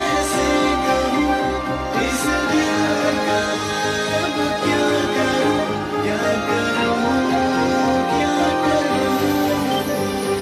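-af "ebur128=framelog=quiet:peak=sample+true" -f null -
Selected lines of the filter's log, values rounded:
Integrated loudness:
  I:         -18.8 LUFS
  Threshold: -28.8 LUFS
Loudness range:
  LRA:         1.1 LU
  Threshold: -38.8 LUFS
  LRA low:   -19.3 LUFS
  LRA high:  -18.2 LUFS
Sample peak:
  Peak:       -8.2 dBFS
True peak:
  Peak:       -8.2 dBFS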